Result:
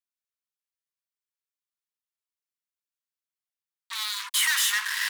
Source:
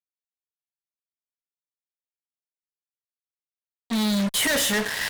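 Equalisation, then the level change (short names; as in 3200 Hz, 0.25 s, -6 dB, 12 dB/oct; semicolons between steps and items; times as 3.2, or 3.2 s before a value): steep high-pass 950 Hz 96 dB/oct; 0.0 dB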